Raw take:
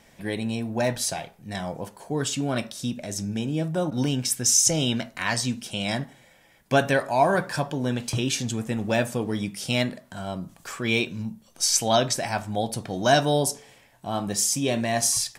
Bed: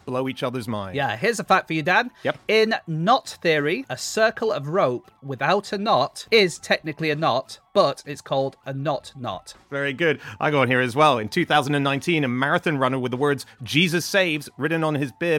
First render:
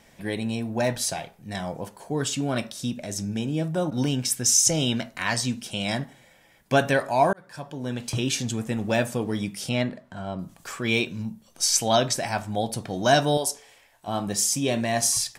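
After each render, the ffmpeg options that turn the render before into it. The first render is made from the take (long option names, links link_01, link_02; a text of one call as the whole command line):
ffmpeg -i in.wav -filter_complex "[0:a]asettb=1/sr,asplit=3[link_01][link_02][link_03];[link_01]atrim=end=9.694[link_04];[link_02]atrim=start=9.69:end=10.39,asetpts=PTS-STARTPTS,afade=type=in:duration=0.004:curve=qsin,afade=type=out:start_time=0.696:duration=0.004:curve=qsin,aemphasis=mode=reproduction:type=75kf[link_05];[link_03]atrim=start=10.386[link_06];[link_04][link_05]acrossfade=duration=0.004:curve1=hsin:curve2=qsin[link_07];[link_07][link_06]acrossfade=duration=0.004:curve1=qsin:curve2=hsin,asettb=1/sr,asplit=3[link_08][link_09][link_10];[link_08]atrim=end=13.374[link_11];[link_09]atrim=start=13.37:end=14.08,asetpts=PTS-STARTPTS,afade=type=in:duration=0.004:curve=qsin,afade=type=out:start_time=0.706:duration=0.004:curve=qsin,equalizer=frequency=160:width=0.68:gain=-15[link_12];[link_10]atrim=start=14.076[link_13];[link_11][link_12]acrossfade=duration=0.004:curve1=hsin:curve2=qsin[link_14];[link_14][link_13]acrossfade=duration=0.004:curve1=qsin:curve2=hsin,asplit=2[link_15][link_16];[link_15]atrim=end=7.33,asetpts=PTS-STARTPTS,afade=type=out:start_time=7.326:duration=0.004:curve=hsin[link_17];[link_16]atrim=start=7.33,asetpts=PTS-STARTPTS,afade=type=in:duration=0.92[link_18];[link_17][link_18]concat=n=2:v=0:a=1" out.wav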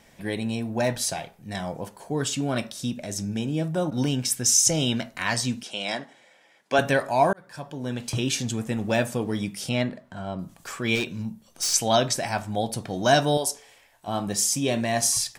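ffmpeg -i in.wav -filter_complex "[0:a]asettb=1/sr,asplit=3[link_01][link_02][link_03];[link_01]atrim=end=5.634[link_04];[link_02]atrim=start=5.63:end=6.79,asetpts=PTS-STARTPTS,afade=type=in:duration=0.004:curve=qsin,afade=type=out:start_time=1.156:duration=0.004:curve=qsin,highpass=340,lowpass=7300[link_05];[link_03]atrim=start=6.786[link_06];[link_04][link_05]acrossfade=duration=0.004:curve1=hsin:curve2=qsin[link_07];[link_07][link_06]acrossfade=duration=0.004:curve1=qsin:curve2=hsin,asettb=1/sr,asplit=3[link_08][link_09][link_10];[link_08]atrim=end=10.954[link_11];[link_09]atrim=start=10.95:end=11.74,asetpts=PTS-STARTPTS,afade=type=in:duration=0.004:curve=qsin,afade=type=out:start_time=0.786:duration=0.004:curve=qsin,asoftclip=type=hard:threshold=-22dB[link_12];[link_10]atrim=start=11.736[link_13];[link_11][link_12]acrossfade=duration=0.004:curve1=hsin:curve2=qsin[link_14];[link_14][link_13]acrossfade=duration=0.004:curve1=qsin:curve2=hsin" out.wav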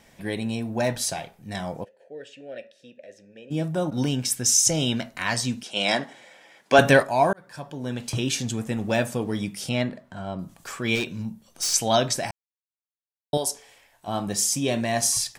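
ffmpeg -i in.wav -filter_complex "[0:a]asplit=3[link_01][link_02][link_03];[link_01]afade=type=out:start_time=1.83:duration=0.02[link_04];[link_02]asplit=3[link_05][link_06][link_07];[link_05]bandpass=frequency=530:width_type=q:width=8,volume=0dB[link_08];[link_06]bandpass=frequency=1840:width_type=q:width=8,volume=-6dB[link_09];[link_07]bandpass=frequency=2480:width_type=q:width=8,volume=-9dB[link_10];[link_08][link_09][link_10]amix=inputs=3:normalize=0,afade=type=in:start_time=1.83:duration=0.02,afade=type=out:start_time=3.5:duration=0.02[link_11];[link_03]afade=type=in:start_time=3.5:duration=0.02[link_12];[link_04][link_11][link_12]amix=inputs=3:normalize=0,asplit=3[link_13][link_14][link_15];[link_13]afade=type=out:start_time=5.75:duration=0.02[link_16];[link_14]acontrast=70,afade=type=in:start_time=5.75:duration=0.02,afade=type=out:start_time=7.02:duration=0.02[link_17];[link_15]afade=type=in:start_time=7.02:duration=0.02[link_18];[link_16][link_17][link_18]amix=inputs=3:normalize=0,asplit=3[link_19][link_20][link_21];[link_19]atrim=end=12.31,asetpts=PTS-STARTPTS,afade=type=out:start_time=12.306:duration=0.004:curve=hsin[link_22];[link_20]atrim=start=12.31:end=13.33,asetpts=PTS-STARTPTS,volume=0[link_23];[link_21]atrim=start=13.33,asetpts=PTS-STARTPTS,afade=type=in:duration=0.004:curve=hsin[link_24];[link_22][link_23][link_24]concat=n=3:v=0:a=1" out.wav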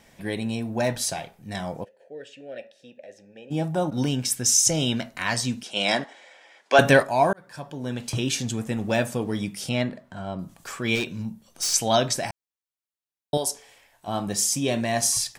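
ffmpeg -i in.wav -filter_complex "[0:a]asettb=1/sr,asplit=3[link_01][link_02][link_03];[link_01]atrim=end=2.594[link_04];[link_02]atrim=start=2.59:end=3.86,asetpts=PTS-STARTPTS,afade=type=in:duration=0.004:curve=qsin,afade=type=out:start_time=1.266:duration=0.004:curve=qsin,equalizer=frequency=810:width=4.9:gain=11.5[link_05];[link_03]atrim=start=3.856[link_06];[link_04][link_05]acrossfade=duration=0.004:curve1=hsin:curve2=qsin[link_07];[link_07][link_06]acrossfade=duration=0.004:curve1=qsin:curve2=hsin,asettb=1/sr,asplit=3[link_08][link_09][link_10];[link_08]atrim=end=6.044[link_11];[link_09]atrim=start=6.04:end=6.79,asetpts=PTS-STARTPTS,afade=type=in:duration=0.004:curve=qsin,afade=type=out:start_time=0.746:duration=0.004:curve=qsin,highpass=420,lowpass=7700[link_12];[link_10]atrim=start=6.786[link_13];[link_11][link_12]acrossfade=duration=0.004:curve1=hsin:curve2=qsin[link_14];[link_14][link_13]acrossfade=duration=0.004:curve1=qsin:curve2=hsin" out.wav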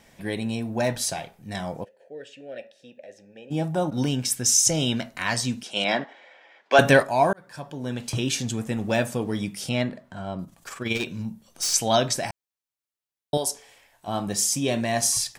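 ffmpeg -i in.wav -filter_complex "[0:a]asettb=1/sr,asplit=3[link_01][link_02][link_03];[link_01]atrim=end=5.844[link_04];[link_02]atrim=start=5.84:end=6.72,asetpts=PTS-STARTPTS,afade=type=in:duration=0.004:curve=qsin,afade=type=out:start_time=0.876:duration=0.004:curve=qsin,highpass=120,lowpass=3300[link_05];[link_03]atrim=start=6.716[link_06];[link_04][link_05]acrossfade=duration=0.004:curve1=hsin:curve2=qsin[link_07];[link_07][link_06]acrossfade=duration=0.004:curve1=qsin:curve2=hsin,asettb=1/sr,asplit=3[link_08][link_09][link_10];[link_08]atrim=end=10.444[link_11];[link_09]atrim=start=10.44:end=11.02,asetpts=PTS-STARTPTS,afade=type=in:duration=0.004:curve=qsin,afade=type=out:start_time=0.576:duration=0.004:curve=qsin,tremolo=f=21:d=0.571[link_12];[link_10]atrim=start=11.016[link_13];[link_11][link_12]acrossfade=duration=0.004:curve1=hsin:curve2=qsin[link_14];[link_14][link_13]acrossfade=duration=0.004:curve1=qsin:curve2=hsin" out.wav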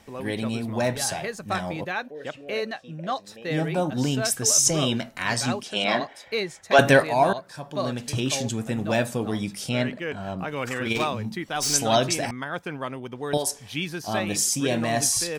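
ffmpeg -i in.wav -i bed.wav -filter_complex "[1:a]volume=-11dB[link_01];[0:a][link_01]amix=inputs=2:normalize=0" out.wav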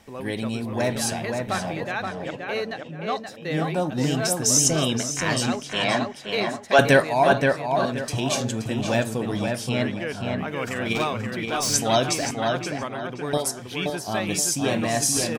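ffmpeg -i in.wav -filter_complex "[0:a]asplit=2[link_01][link_02];[link_02]adelay=525,lowpass=frequency=3200:poles=1,volume=-4dB,asplit=2[link_03][link_04];[link_04]adelay=525,lowpass=frequency=3200:poles=1,volume=0.31,asplit=2[link_05][link_06];[link_06]adelay=525,lowpass=frequency=3200:poles=1,volume=0.31,asplit=2[link_07][link_08];[link_08]adelay=525,lowpass=frequency=3200:poles=1,volume=0.31[link_09];[link_01][link_03][link_05][link_07][link_09]amix=inputs=5:normalize=0" out.wav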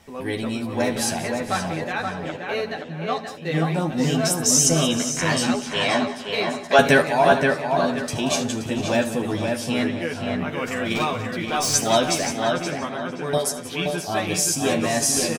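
ffmpeg -i in.wav -filter_complex "[0:a]asplit=2[link_01][link_02];[link_02]adelay=12,volume=-3.5dB[link_03];[link_01][link_03]amix=inputs=2:normalize=0,aecho=1:1:76|182|449:0.141|0.178|0.119" out.wav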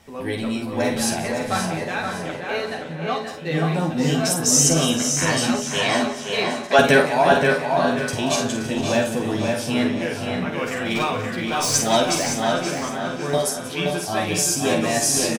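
ffmpeg -i in.wav -filter_complex "[0:a]asplit=2[link_01][link_02];[link_02]adelay=49,volume=-7dB[link_03];[link_01][link_03]amix=inputs=2:normalize=0,aecho=1:1:560|1120|1680|2240:0.316|0.111|0.0387|0.0136" out.wav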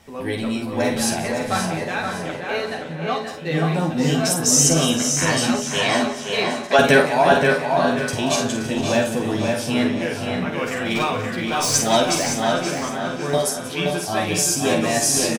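ffmpeg -i in.wav -af "volume=1dB,alimiter=limit=-3dB:level=0:latency=1" out.wav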